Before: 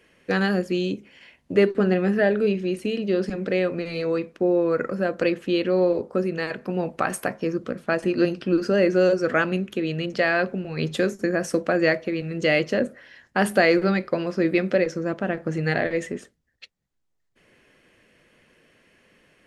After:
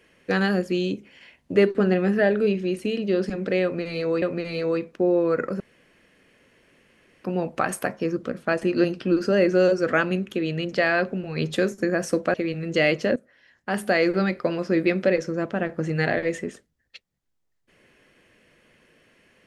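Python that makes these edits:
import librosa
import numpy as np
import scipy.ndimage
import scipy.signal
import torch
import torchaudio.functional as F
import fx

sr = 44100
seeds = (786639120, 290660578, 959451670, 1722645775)

y = fx.edit(x, sr, fx.repeat(start_s=3.63, length_s=0.59, count=2),
    fx.room_tone_fill(start_s=5.01, length_s=1.64),
    fx.cut(start_s=11.75, length_s=0.27),
    fx.fade_in_from(start_s=12.84, length_s=1.24, floor_db=-16.0), tone=tone)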